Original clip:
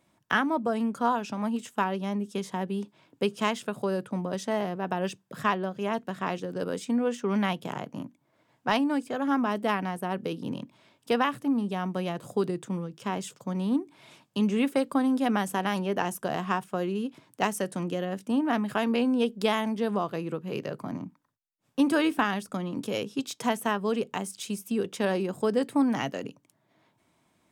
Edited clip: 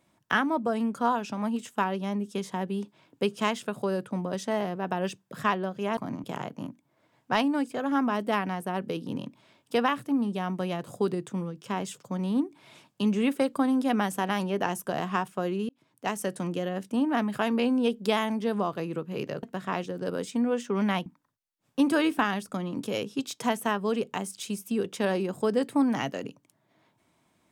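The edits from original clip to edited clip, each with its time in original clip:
0:05.97–0:07.60: swap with 0:20.79–0:21.06
0:17.05–0:17.66: fade in

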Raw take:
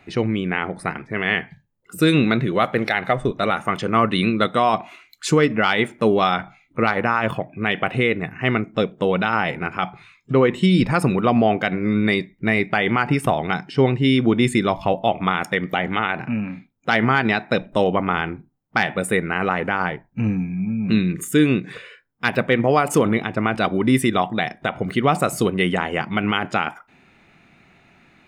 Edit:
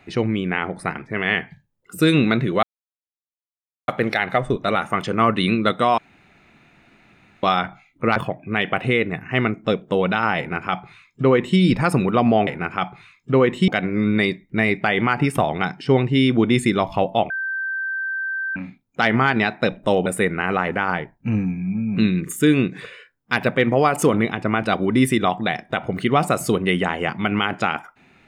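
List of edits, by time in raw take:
0:02.63: splice in silence 1.25 s
0:04.73–0:06.18: fill with room tone
0:06.91–0:07.26: remove
0:09.48–0:10.69: duplicate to 0:11.57
0:15.19–0:16.45: beep over 1,560 Hz −22.5 dBFS
0:17.95–0:18.98: remove

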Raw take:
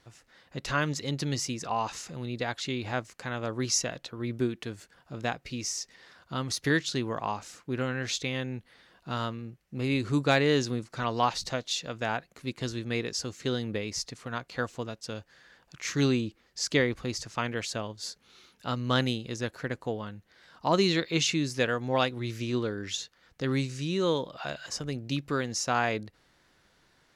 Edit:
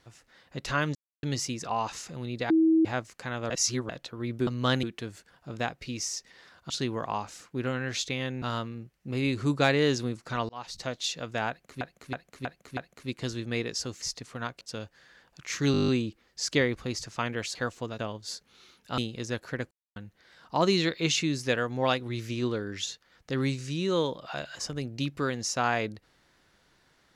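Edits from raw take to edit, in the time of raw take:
0:00.95–0:01.23: silence
0:02.50–0:02.85: beep over 322 Hz −18 dBFS
0:03.50–0:03.89: reverse
0:06.34–0:06.84: remove
0:08.56–0:09.09: remove
0:11.16–0:11.65: fade in
0:12.16–0:12.48: repeat, 5 plays
0:13.41–0:13.93: remove
0:14.52–0:14.96: move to 0:17.74
0:16.07: stutter 0.02 s, 9 plays
0:18.73–0:19.09: move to 0:04.47
0:19.82–0:20.07: silence

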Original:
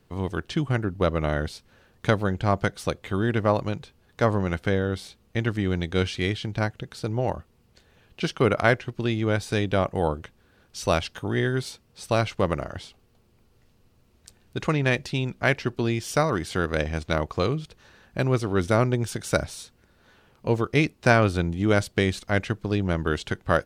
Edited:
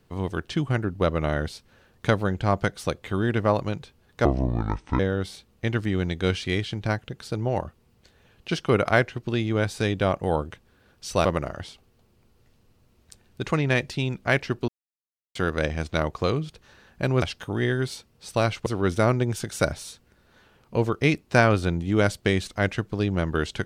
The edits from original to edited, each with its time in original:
0:04.25–0:04.71: play speed 62%
0:10.97–0:12.41: move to 0:18.38
0:15.84–0:16.51: silence

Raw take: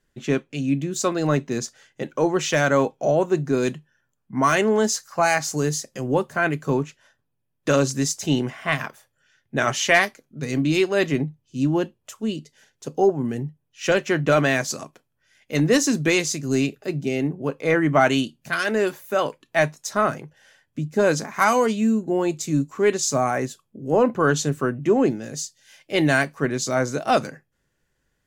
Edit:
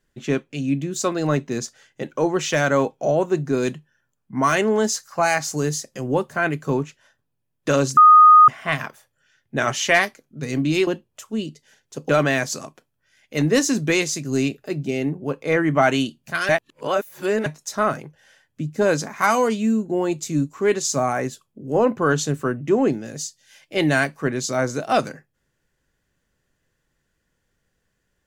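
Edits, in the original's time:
0:07.97–0:08.48: beep over 1,240 Hz −6 dBFS
0:10.87–0:11.77: remove
0:12.99–0:14.27: remove
0:18.67–0:19.64: reverse

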